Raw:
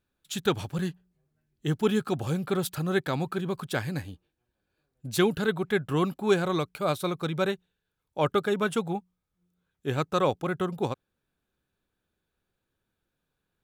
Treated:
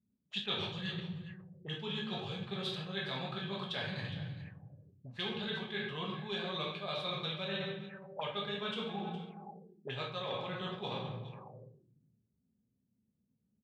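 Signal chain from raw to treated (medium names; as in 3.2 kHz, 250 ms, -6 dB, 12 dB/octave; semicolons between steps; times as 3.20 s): high-pass 79 Hz 24 dB/octave; peaking EQ 310 Hz -12 dB 0.83 oct; band-stop 1.4 kHz, Q 6.8; simulated room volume 180 m³, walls mixed, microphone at 1.3 m; overload inside the chain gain 13.5 dB; reverse; compression 20:1, threshold -36 dBFS, peak gain reduction 19.5 dB; reverse; bass shelf 200 Hz -2.5 dB; on a send: delay 413 ms -14.5 dB; on the sum: touch-sensitive low-pass 230–3500 Hz up, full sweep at -40.5 dBFS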